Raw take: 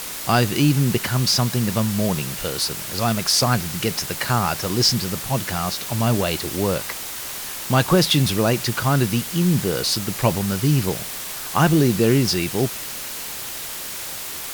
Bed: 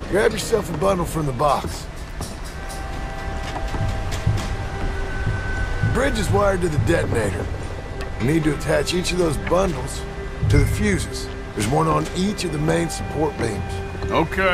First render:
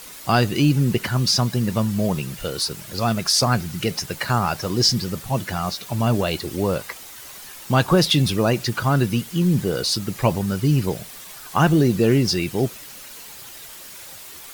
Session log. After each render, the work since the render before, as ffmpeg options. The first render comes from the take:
-af "afftdn=nr=10:nf=-31"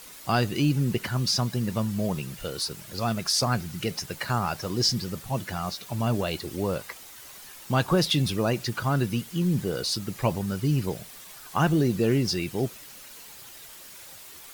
-af "volume=-6dB"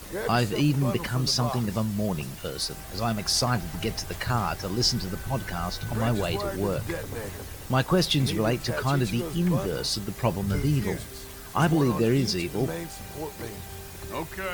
-filter_complex "[1:a]volume=-14dB[a];[0:a][a]amix=inputs=2:normalize=0"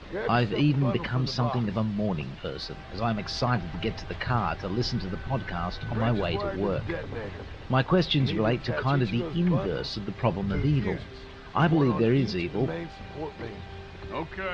-af "lowpass=f=3.9k:w=0.5412,lowpass=f=3.9k:w=1.3066,bandreject=f=50:t=h:w=6,bandreject=f=100:t=h:w=6"

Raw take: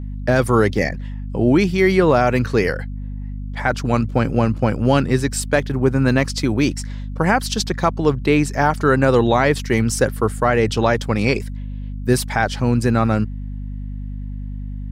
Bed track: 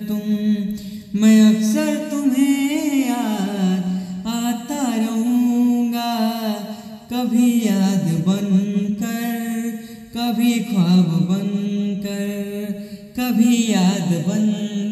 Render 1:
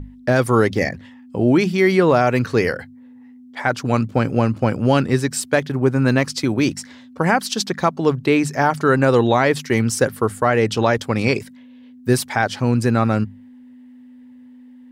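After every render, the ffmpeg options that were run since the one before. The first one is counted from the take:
-af "bandreject=f=50:t=h:w=6,bandreject=f=100:t=h:w=6,bandreject=f=150:t=h:w=6,bandreject=f=200:t=h:w=6"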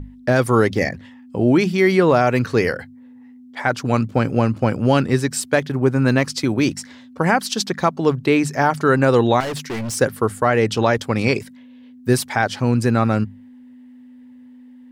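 -filter_complex "[0:a]asettb=1/sr,asplit=3[a][b][c];[a]atrim=end=9.404[d];[b]atrim=start=9.4:end=9.95,asetpts=PTS-STARTPTS,afade=t=in:d=0.004:c=qsin,afade=t=out:st=0.546:d=0.004:c=qsin,volume=23.5dB,asoftclip=hard,volume=-23.5dB[e];[c]atrim=start=9.946[f];[d][e]acrossfade=d=0.004:c1=hsin:c2=qsin[g];[g][f]acrossfade=d=0.004:c1=qsin:c2=hsin"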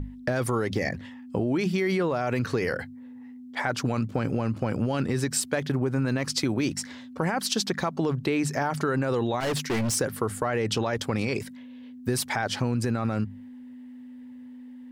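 -af "alimiter=limit=-12dB:level=0:latency=1:release=32,acompressor=threshold=-22dB:ratio=6"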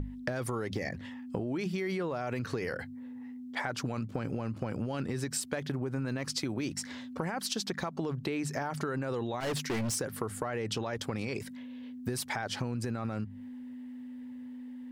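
-af "acompressor=threshold=-33dB:ratio=3"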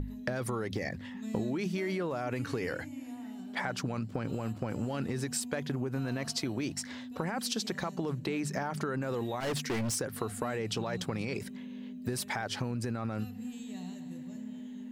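-filter_complex "[1:a]volume=-28.5dB[a];[0:a][a]amix=inputs=2:normalize=0"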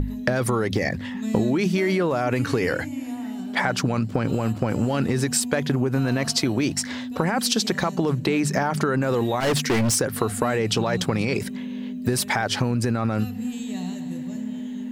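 -af "volume=11.5dB"

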